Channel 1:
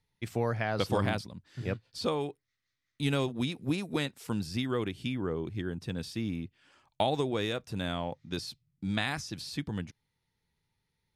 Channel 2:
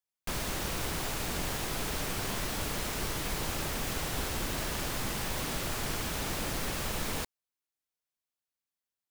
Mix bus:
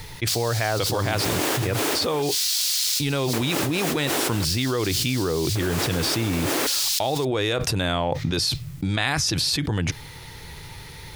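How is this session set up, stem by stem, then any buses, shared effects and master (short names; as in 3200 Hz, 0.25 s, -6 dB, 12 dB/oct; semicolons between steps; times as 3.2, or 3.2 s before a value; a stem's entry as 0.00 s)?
+1.5 dB, 0.00 s, no send, dry
-1.5 dB, 0.00 s, no send, LFO high-pass square 0.45 Hz 300–4500 Hz; auto duck -8 dB, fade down 1.25 s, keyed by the first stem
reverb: off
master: bell 210 Hz -11 dB 0.47 oct; fast leveller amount 100%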